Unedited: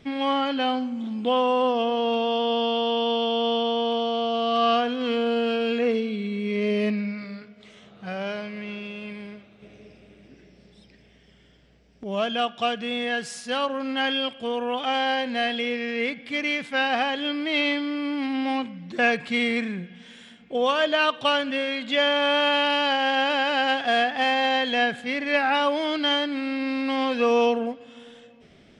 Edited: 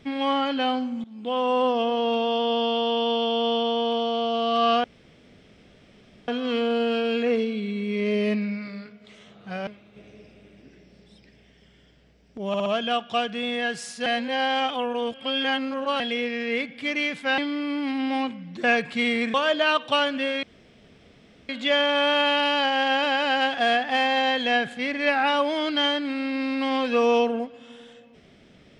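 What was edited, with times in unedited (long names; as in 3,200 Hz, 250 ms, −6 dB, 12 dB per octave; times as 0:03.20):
0:01.04–0:01.56: fade in, from −20 dB
0:04.84: splice in room tone 1.44 s
0:08.23–0:09.33: remove
0:12.14: stutter 0.06 s, 4 plays
0:13.54–0:15.48: reverse
0:16.86–0:17.73: remove
0:19.69–0:20.67: remove
0:21.76: splice in room tone 1.06 s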